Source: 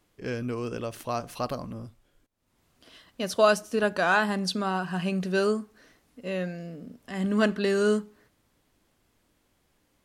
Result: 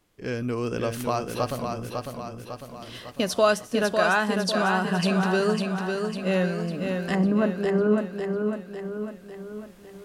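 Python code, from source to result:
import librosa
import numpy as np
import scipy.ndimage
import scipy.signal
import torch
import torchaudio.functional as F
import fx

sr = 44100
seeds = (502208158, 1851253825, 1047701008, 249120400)

y = fx.recorder_agc(x, sr, target_db=-15.0, rise_db_per_s=6.5, max_gain_db=30)
y = fx.cheby1_lowpass(y, sr, hz=1000.0, order=2, at=(7.15, 7.98))
y = fx.echo_feedback(y, sr, ms=551, feedback_pct=53, wet_db=-5.0)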